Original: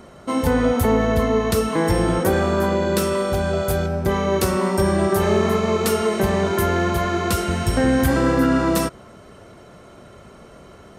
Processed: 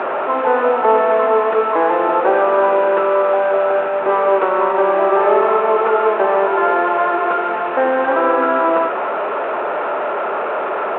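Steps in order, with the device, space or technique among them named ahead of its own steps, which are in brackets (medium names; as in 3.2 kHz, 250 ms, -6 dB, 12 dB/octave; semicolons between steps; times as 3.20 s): digital answering machine (band-pass 350–3100 Hz; one-bit delta coder 16 kbps, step -21.5 dBFS; cabinet simulation 390–3300 Hz, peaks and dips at 410 Hz +4 dB, 610 Hz +5 dB, 880 Hz +8 dB, 1.3 kHz +5 dB, 2.1 kHz -7 dB, 3.1 kHz -9 dB); trim +4.5 dB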